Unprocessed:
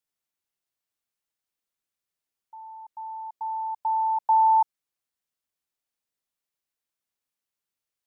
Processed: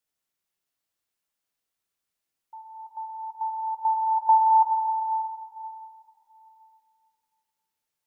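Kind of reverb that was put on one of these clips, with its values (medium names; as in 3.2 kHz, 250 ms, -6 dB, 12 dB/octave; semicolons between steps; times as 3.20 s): plate-style reverb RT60 2.9 s, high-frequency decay 0.75×, pre-delay 0 ms, DRR 2 dB; trim +1.5 dB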